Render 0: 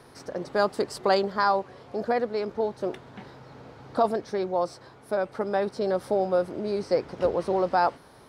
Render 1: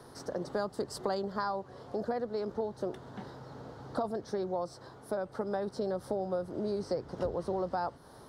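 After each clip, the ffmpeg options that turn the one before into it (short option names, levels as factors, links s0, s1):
-filter_complex "[0:a]equalizer=f=2400:w=2.3:g=-12.5,acrossover=split=150[s0][s1];[s1]acompressor=threshold=0.0251:ratio=4[s2];[s0][s2]amix=inputs=2:normalize=0"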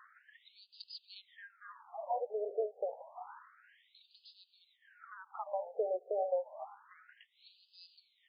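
-af "aecho=1:1:1065:0.237,tremolo=f=2.4:d=0.55,afftfilt=real='re*between(b*sr/1024,540*pow(3600/540,0.5+0.5*sin(2*PI*0.29*pts/sr))/1.41,540*pow(3600/540,0.5+0.5*sin(2*PI*0.29*pts/sr))*1.41)':imag='im*between(b*sr/1024,540*pow(3600/540,0.5+0.5*sin(2*PI*0.29*pts/sr))/1.41,540*pow(3600/540,0.5+0.5*sin(2*PI*0.29*pts/sr))*1.41)':win_size=1024:overlap=0.75,volume=1.5"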